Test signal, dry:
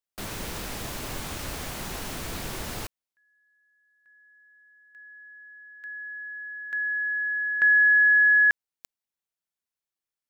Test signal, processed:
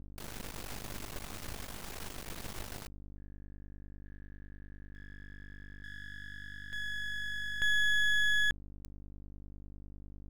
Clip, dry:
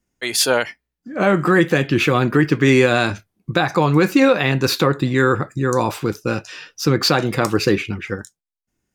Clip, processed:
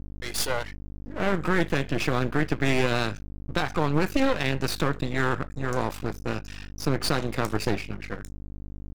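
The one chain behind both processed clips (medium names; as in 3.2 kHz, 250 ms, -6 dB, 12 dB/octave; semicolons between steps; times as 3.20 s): hum 50 Hz, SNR 12 dB; half-wave rectifier; trim -6 dB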